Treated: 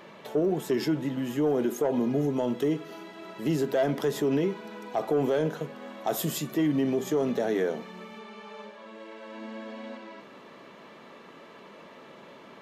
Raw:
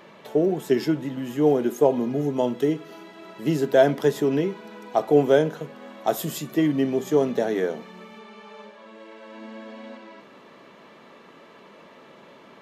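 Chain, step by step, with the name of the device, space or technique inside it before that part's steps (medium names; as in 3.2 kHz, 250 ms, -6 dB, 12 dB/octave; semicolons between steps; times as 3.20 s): soft clipper into limiter (saturation -10.5 dBFS, distortion -18 dB; peak limiter -18.5 dBFS, peak gain reduction 7.5 dB)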